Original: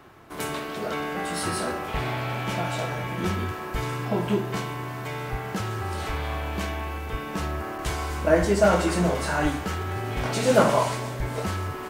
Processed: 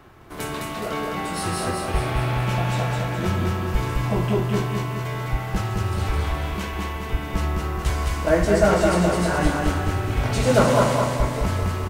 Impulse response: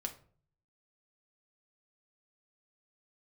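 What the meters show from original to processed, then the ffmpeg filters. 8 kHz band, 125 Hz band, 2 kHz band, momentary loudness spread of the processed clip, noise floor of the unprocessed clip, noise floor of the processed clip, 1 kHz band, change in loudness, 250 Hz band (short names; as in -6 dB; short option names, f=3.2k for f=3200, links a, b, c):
+2.0 dB, +6.5 dB, +2.0 dB, 10 LU, -35 dBFS, -31 dBFS, +2.5 dB, +3.5 dB, +3.5 dB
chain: -filter_complex "[0:a]lowshelf=f=87:g=11.5,asplit=2[a][b];[b]aecho=0:1:210|420|630|840|1050|1260|1470:0.708|0.361|0.184|0.0939|0.0479|0.0244|0.0125[c];[a][c]amix=inputs=2:normalize=0"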